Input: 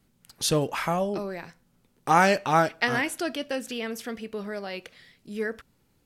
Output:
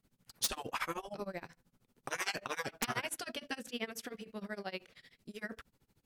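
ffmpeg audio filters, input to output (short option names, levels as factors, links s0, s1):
-af "afftfilt=real='re*lt(hypot(re,im),0.2)':imag='im*lt(hypot(re,im),0.2)':win_size=1024:overlap=0.75,aeval=exprs='(mod(6.68*val(0)+1,2)-1)/6.68':c=same,tremolo=f=13:d=0.95,volume=0.75"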